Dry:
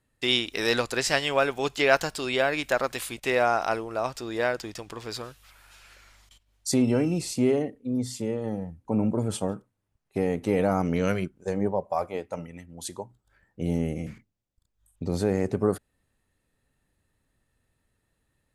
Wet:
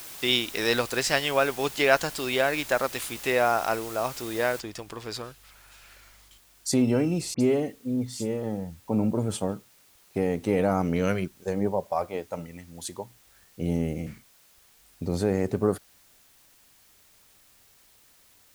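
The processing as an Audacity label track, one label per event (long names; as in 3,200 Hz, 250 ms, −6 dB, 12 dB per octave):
4.600000	4.600000	noise floor change −42 dB −59 dB
7.340000	8.430000	all-pass dispersion highs, late by 65 ms, half as late at 3,000 Hz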